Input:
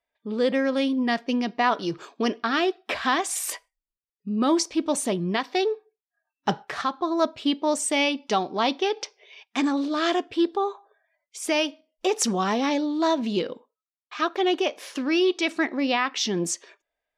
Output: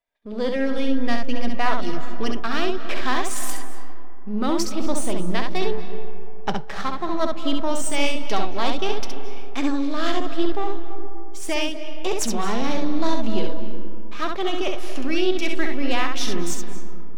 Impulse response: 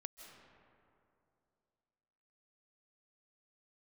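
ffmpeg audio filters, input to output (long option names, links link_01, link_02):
-filter_complex "[0:a]aeval=exprs='if(lt(val(0),0),0.447*val(0),val(0))':channel_layout=same,asplit=2[link_01][link_02];[1:a]atrim=start_sample=2205,lowshelf=frequency=150:gain=11,adelay=67[link_03];[link_02][link_03]afir=irnorm=-1:irlink=0,volume=0.5dB[link_04];[link_01][link_04]amix=inputs=2:normalize=0"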